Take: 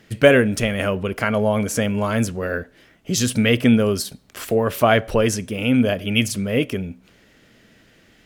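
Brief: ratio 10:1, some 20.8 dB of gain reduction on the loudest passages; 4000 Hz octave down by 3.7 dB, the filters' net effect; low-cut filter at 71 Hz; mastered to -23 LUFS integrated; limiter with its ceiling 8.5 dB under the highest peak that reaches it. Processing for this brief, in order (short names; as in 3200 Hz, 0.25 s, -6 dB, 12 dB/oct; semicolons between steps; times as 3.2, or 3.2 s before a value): HPF 71 Hz; bell 4000 Hz -5.5 dB; compressor 10:1, threshold -30 dBFS; gain +13 dB; limiter -11 dBFS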